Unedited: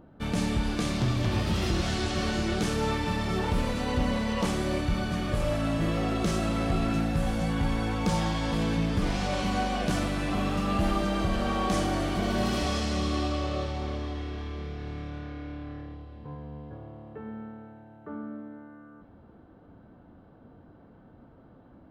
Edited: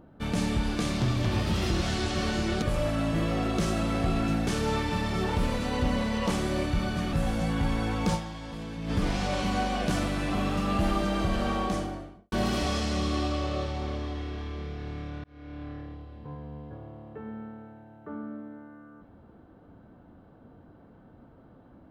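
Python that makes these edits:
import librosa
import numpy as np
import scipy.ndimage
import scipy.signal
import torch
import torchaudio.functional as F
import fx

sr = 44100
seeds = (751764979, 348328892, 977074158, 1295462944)

y = fx.studio_fade_out(x, sr, start_s=11.44, length_s=0.88)
y = fx.edit(y, sr, fx.move(start_s=5.28, length_s=1.85, to_s=2.62),
    fx.fade_down_up(start_s=8.14, length_s=0.77, db=-10.5, fade_s=0.38, curve='exp'),
    fx.fade_in_span(start_s=15.24, length_s=0.39), tone=tone)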